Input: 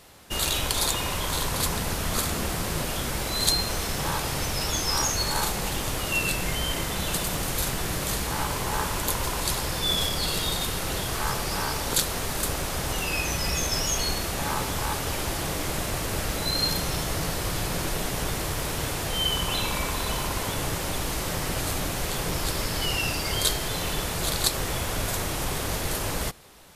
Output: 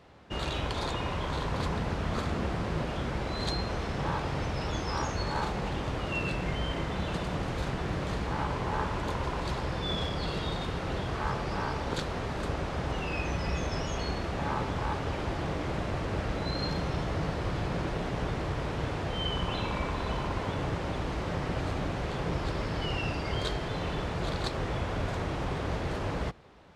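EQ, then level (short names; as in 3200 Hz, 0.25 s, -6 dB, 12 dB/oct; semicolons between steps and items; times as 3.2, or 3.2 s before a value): HPF 43 Hz; tape spacing loss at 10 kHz 30 dB; 0.0 dB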